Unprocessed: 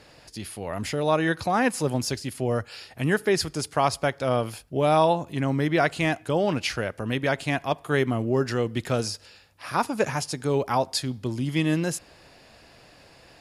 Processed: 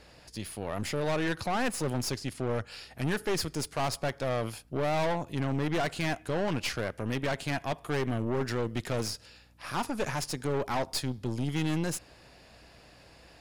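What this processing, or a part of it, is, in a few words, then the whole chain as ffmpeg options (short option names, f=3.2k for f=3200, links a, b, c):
valve amplifier with mains hum: -filter_complex "[0:a]asettb=1/sr,asplit=3[a][b][c];[a]atrim=end=2.174[d];[b]atrim=start=2.17:end=2.67,asetpts=PTS-STARTPTS,afade=t=in:d=0.004:c=qsin,afade=t=out:st=0.496:d=0.004:c=qsin,lowpass=9k[e];[c]atrim=start=2.666[f];[d][e]acrossfade=d=0.004:c1=hsin:c2=qsin[g];[g][f]acrossfade=d=0.004:c1=qsin:c2=hsin,aeval=exprs='(tanh(20*val(0)+0.65)-tanh(0.65))/20':c=same,aeval=exprs='val(0)+0.000891*(sin(2*PI*60*n/s)+sin(2*PI*2*60*n/s)/2+sin(2*PI*3*60*n/s)/3+sin(2*PI*4*60*n/s)/4+sin(2*PI*5*60*n/s)/5)':c=same"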